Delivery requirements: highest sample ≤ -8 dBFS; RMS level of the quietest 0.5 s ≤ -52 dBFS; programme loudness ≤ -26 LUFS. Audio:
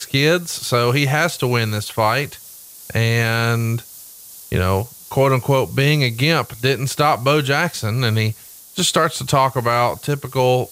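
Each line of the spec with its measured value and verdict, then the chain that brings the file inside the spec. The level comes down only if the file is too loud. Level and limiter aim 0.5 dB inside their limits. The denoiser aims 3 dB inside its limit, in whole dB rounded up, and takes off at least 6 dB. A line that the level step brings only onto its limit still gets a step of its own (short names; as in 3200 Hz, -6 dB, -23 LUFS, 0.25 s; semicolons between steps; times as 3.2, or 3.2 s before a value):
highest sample -4.5 dBFS: fail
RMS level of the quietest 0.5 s -40 dBFS: fail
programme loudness -18.5 LUFS: fail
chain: denoiser 7 dB, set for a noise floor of -40 dBFS; gain -8 dB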